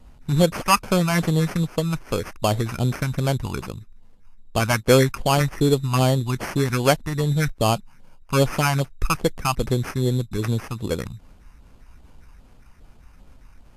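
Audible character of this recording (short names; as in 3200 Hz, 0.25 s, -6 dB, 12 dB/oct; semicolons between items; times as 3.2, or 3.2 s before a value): phasing stages 4, 2.5 Hz, lowest notch 440–3500 Hz; aliases and images of a low sample rate 3800 Hz, jitter 0%; Vorbis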